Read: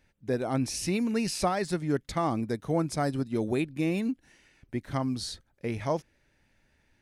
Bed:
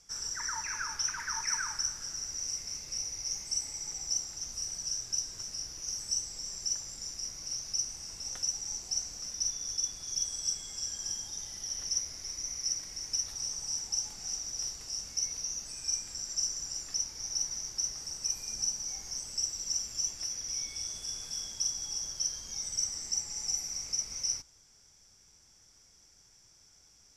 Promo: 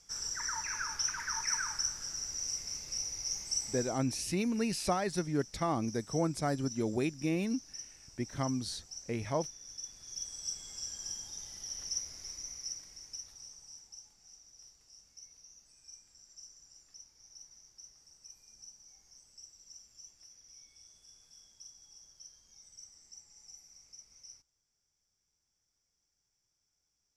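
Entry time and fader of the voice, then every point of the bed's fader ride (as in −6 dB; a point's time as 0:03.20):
3.45 s, −4.0 dB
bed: 0:03.82 −1 dB
0:04.08 −13 dB
0:09.61 −13 dB
0:10.68 −4.5 dB
0:12.27 −4.5 dB
0:14.18 −20.5 dB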